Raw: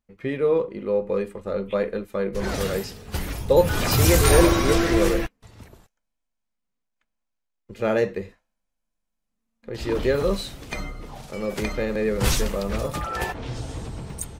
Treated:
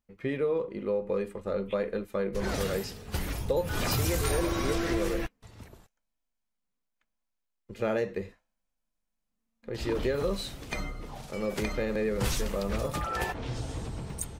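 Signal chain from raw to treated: compression 5:1, threshold -22 dBFS, peak gain reduction 11.5 dB; trim -3 dB

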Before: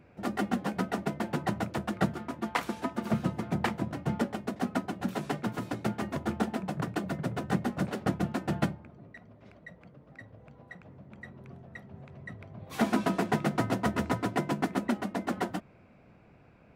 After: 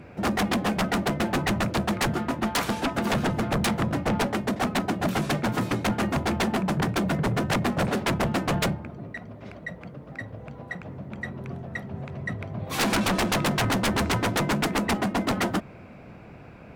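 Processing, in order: Chebyshev shaper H 7 -10 dB, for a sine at -12 dBFS; sine folder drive 15 dB, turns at -10 dBFS; trim -8 dB

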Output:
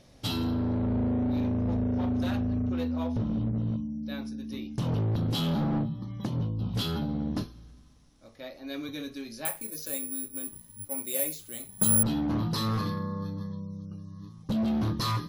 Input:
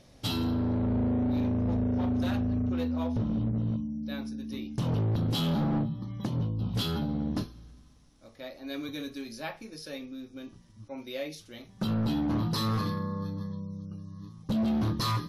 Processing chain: 9.45–12.03 s: careless resampling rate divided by 4×, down filtered, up zero stuff

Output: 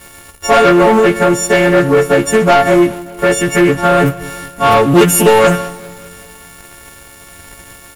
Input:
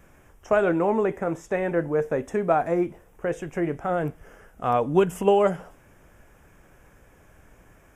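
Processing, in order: partials quantised in pitch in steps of 4 st; in parallel at -2.5 dB: compression, threshold -32 dBFS, peak gain reduction 17 dB; on the sum: waveshaping leveller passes 3; feedback delay 195 ms, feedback 57%, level -20 dB; on a send at -14.5 dB: reverberation RT60 0.80 s, pre-delay 6 ms; on the sum: loudspeaker Doppler distortion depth 0.14 ms; trim +4.5 dB

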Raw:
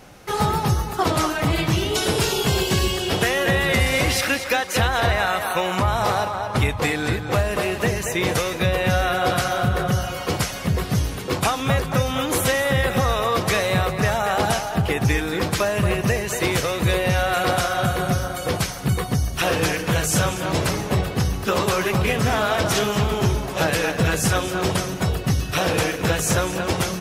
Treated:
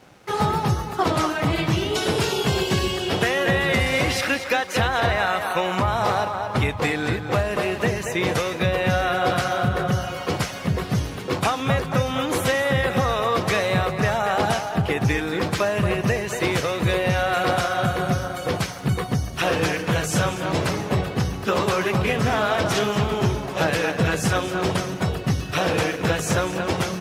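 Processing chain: high-pass 86 Hz; treble shelf 6.8 kHz -10 dB; crossover distortion -52.5 dBFS

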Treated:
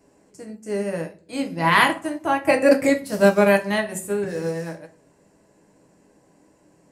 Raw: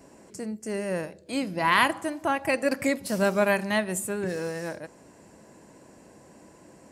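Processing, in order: simulated room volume 37 m³, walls mixed, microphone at 0.45 m; 2.43–2.90 s: dynamic bell 560 Hz, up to +5 dB, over -32 dBFS, Q 0.73; upward expansion 1.5:1, over -41 dBFS; trim +4.5 dB

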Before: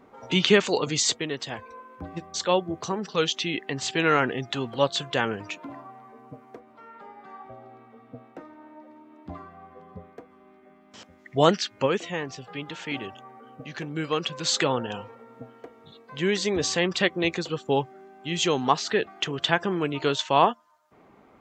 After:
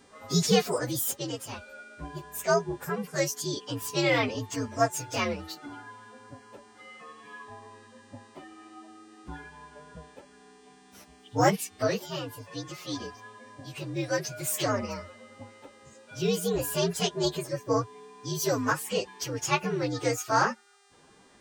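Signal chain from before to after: frequency axis rescaled in octaves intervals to 124%; mains buzz 400 Hz, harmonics 24, -63 dBFS -2 dB/octave

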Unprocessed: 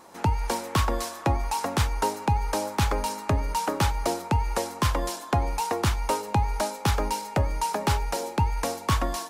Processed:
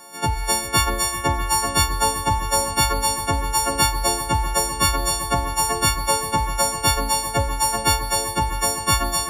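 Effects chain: partials quantised in pitch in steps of 4 st; echo with a slow build-up 129 ms, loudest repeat 5, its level -16 dB; trim +1.5 dB

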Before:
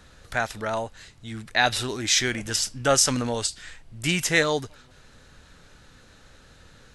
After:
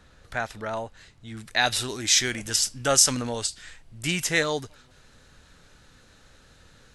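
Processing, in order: treble shelf 4.2 kHz -5 dB, from 1.37 s +7.5 dB, from 3.15 s +2.5 dB; trim -3 dB

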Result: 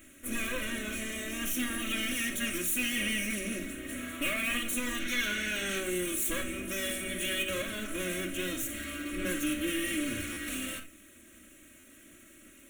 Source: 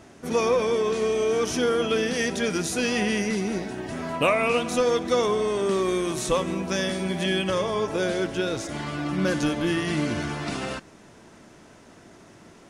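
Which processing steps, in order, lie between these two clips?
comb filter that takes the minimum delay 3.2 ms; pre-emphasis filter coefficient 0.8; time-frequency box 5.00–5.79 s, 1.3–6.7 kHz +10 dB; treble shelf 9.8 kHz +4 dB; hum notches 50/100 Hz; in parallel at +2 dB: peak limiter -26.5 dBFS, peak gain reduction 10 dB; on the sum: saturation -23 dBFS, distortion -16 dB; static phaser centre 2.1 kHz, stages 4; reverberation, pre-delay 4 ms, DRR 3.5 dB; buffer glitch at 10.32/11.79 s, samples 512, times 3

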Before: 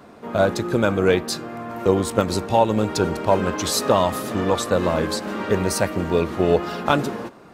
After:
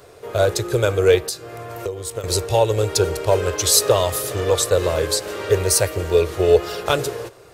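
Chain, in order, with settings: FFT filter 120 Hz 0 dB, 220 Hz -25 dB, 430 Hz +1 dB, 870 Hz -10 dB, 9.2 kHz +6 dB; 1.18–2.24 s: compression 16:1, threshold -29 dBFS, peak gain reduction 15.5 dB; trim +5 dB

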